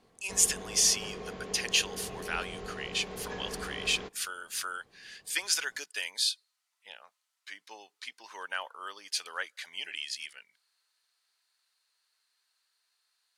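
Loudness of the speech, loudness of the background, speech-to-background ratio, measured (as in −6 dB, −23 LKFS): −31.0 LKFS, −42.0 LKFS, 11.0 dB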